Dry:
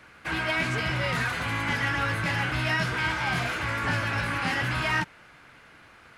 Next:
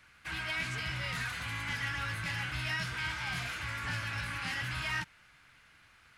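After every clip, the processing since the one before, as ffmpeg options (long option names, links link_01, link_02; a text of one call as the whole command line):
ffmpeg -i in.wav -af "equalizer=frequency=430:width=0.41:gain=-13.5,volume=-4dB" out.wav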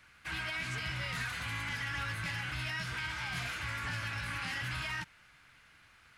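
ffmpeg -i in.wav -af "alimiter=level_in=3.5dB:limit=-24dB:level=0:latency=1:release=85,volume=-3.5dB" out.wav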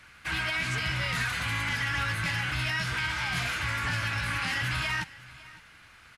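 ffmpeg -i in.wav -af "aecho=1:1:557:0.1,aresample=32000,aresample=44100,volume=7.5dB" out.wav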